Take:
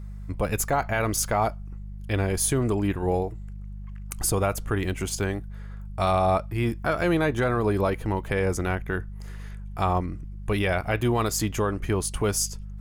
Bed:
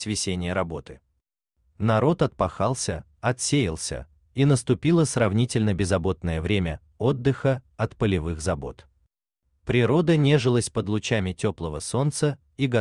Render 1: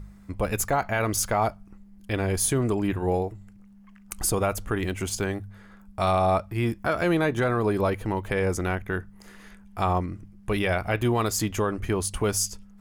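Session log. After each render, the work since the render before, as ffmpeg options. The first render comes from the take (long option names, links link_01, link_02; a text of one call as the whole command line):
ffmpeg -i in.wav -af "bandreject=frequency=50:width_type=h:width=4,bandreject=frequency=100:width_type=h:width=4,bandreject=frequency=150:width_type=h:width=4" out.wav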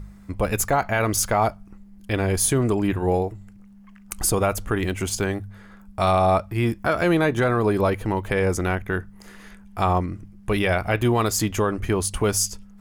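ffmpeg -i in.wav -af "volume=3.5dB" out.wav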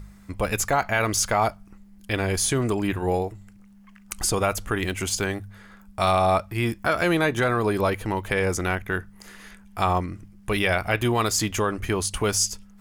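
ffmpeg -i in.wav -filter_complex "[0:a]acrossover=split=7800[link_01][link_02];[link_02]acompressor=threshold=-35dB:ratio=4:attack=1:release=60[link_03];[link_01][link_03]amix=inputs=2:normalize=0,tiltshelf=frequency=1200:gain=-3.5" out.wav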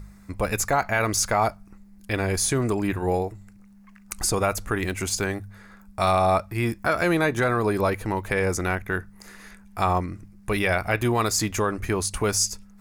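ffmpeg -i in.wav -af "equalizer=frequency=3100:width=4.9:gain=-8.5" out.wav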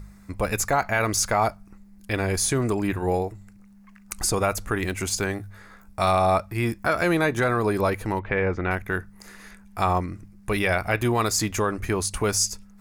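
ffmpeg -i in.wav -filter_complex "[0:a]asettb=1/sr,asplit=3[link_01][link_02][link_03];[link_01]atrim=end=5.384[link_04];[link_02]atrim=start=5.38:end=6,asetpts=PTS-STARTPTS,afade=type=in:duration=0.004:curve=qsin,afade=type=out:start_time=0.616:duration=0.004:curve=qsin,asplit=2[link_05][link_06];[link_06]adelay=17,volume=-3dB[link_07];[link_05][link_07]amix=inputs=2:normalize=0,atrim=end_sample=27342[link_08];[link_03]atrim=start=5.996[link_09];[link_04][link_08]acrossfade=duration=0.004:curve1=hsin:curve2=qsin[link_10];[link_10][link_09]acrossfade=duration=0.004:curve1=qsin:curve2=hsin,asettb=1/sr,asplit=3[link_11][link_12][link_13];[link_11]atrim=end=8.194[link_14];[link_12]atrim=start=8.19:end=8.71,asetpts=PTS-STARTPTS,afade=type=in:duration=0.004:curve=qsin,afade=type=out:start_time=0.516:duration=0.004:curve=qsin,lowpass=frequency=3000:width=0.5412,lowpass=frequency=3000:width=1.3066[link_15];[link_13]atrim=start=8.706[link_16];[link_14][link_15]acrossfade=duration=0.004:curve1=hsin:curve2=qsin[link_17];[link_17][link_16]acrossfade=duration=0.004:curve1=qsin:curve2=hsin" out.wav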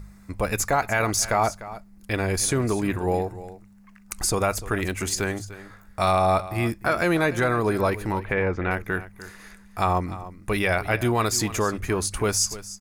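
ffmpeg -i in.wav -af "aecho=1:1:298:0.168" out.wav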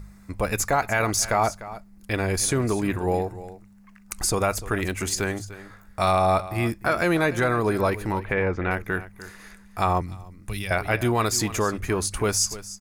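ffmpeg -i in.wav -filter_complex "[0:a]asettb=1/sr,asplit=3[link_01][link_02][link_03];[link_01]atrim=end=10.014[link_04];[link_02]atrim=start=10.01:end=10.71,asetpts=PTS-STARTPTS,afade=type=in:duration=0.004:curve=qsin,afade=type=out:start_time=0.696:duration=0.004:curve=qsin,acrossover=split=170|3000[link_05][link_06][link_07];[link_06]acompressor=threshold=-51dB:ratio=2:attack=3.2:release=140:knee=2.83:detection=peak[link_08];[link_05][link_08][link_07]amix=inputs=3:normalize=0[link_09];[link_03]atrim=start=10.706[link_10];[link_04][link_09]acrossfade=duration=0.004:curve1=hsin:curve2=qsin[link_11];[link_11][link_10]acrossfade=duration=0.004:curve1=qsin:curve2=hsin" out.wav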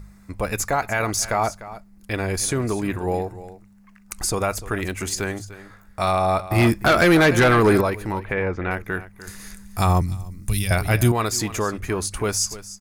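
ffmpeg -i in.wav -filter_complex "[0:a]asplit=3[link_01][link_02][link_03];[link_01]afade=type=out:start_time=6.5:duration=0.02[link_04];[link_02]aeval=exprs='0.316*sin(PI/2*2*val(0)/0.316)':channel_layout=same,afade=type=in:start_time=6.5:duration=0.02,afade=type=out:start_time=7.8:duration=0.02[link_05];[link_03]afade=type=in:start_time=7.8:duration=0.02[link_06];[link_04][link_05][link_06]amix=inputs=3:normalize=0,asettb=1/sr,asplit=3[link_07][link_08][link_09];[link_07]atrim=end=9.274[link_10];[link_08]atrim=start=9.27:end=11.12,asetpts=PTS-STARTPTS,afade=type=in:duration=0.004:curve=qsin,afade=type=out:start_time=1.846:duration=0.004:curve=qsin,bass=frequency=250:gain=10,treble=frequency=4000:gain=13[link_11];[link_09]atrim=start=11.116[link_12];[link_10][link_11]acrossfade=duration=0.004:curve1=hsin:curve2=qsin[link_13];[link_13][link_12]acrossfade=duration=0.004:curve1=qsin:curve2=hsin" out.wav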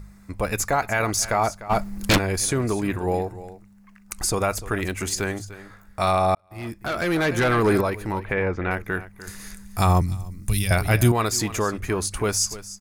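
ffmpeg -i in.wav -filter_complex "[0:a]asplit=3[link_01][link_02][link_03];[link_01]afade=type=out:start_time=1.69:duration=0.02[link_04];[link_02]aeval=exprs='0.237*sin(PI/2*5.01*val(0)/0.237)':channel_layout=same,afade=type=in:start_time=1.69:duration=0.02,afade=type=out:start_time=2.17:duration=0.02[link_05];[link_03]afade=type=in:start_time=2.17:duration=0.02[link_06];[link_04][link_05][link_06]amix=inputs=3:normalize=0,asplit=2[link_07][link_08];[link_07]atrim=end=6.35,asetpts=PTS-STARTPTS,afade=type=out:start_time=6.346:duration=0.004:curve=hsin[link_09];[link_08]atrim=start=6.35,asetpts=PTS-STARTPTS,afade=type=in:duration=1.94[link_10];[link_09][link_10]concat=n=2:v=0:a=1" out.wav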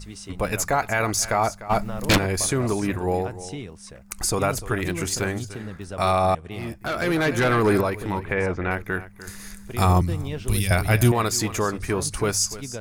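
ffmpeg -i in.wav -i bed.wav -filter_complex "[1:a]volume=-13dB[link_01];[0:a][link_01]amix=inputs=2:normalize=0" out.wav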